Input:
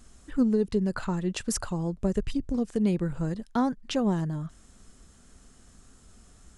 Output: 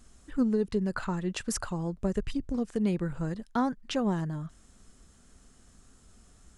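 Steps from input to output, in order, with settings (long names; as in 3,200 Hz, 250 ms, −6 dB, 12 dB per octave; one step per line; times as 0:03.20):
dynamic equaliser 1,500 Hz, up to +4 dB, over −46 dBFS, Q 0.79
level −3 dB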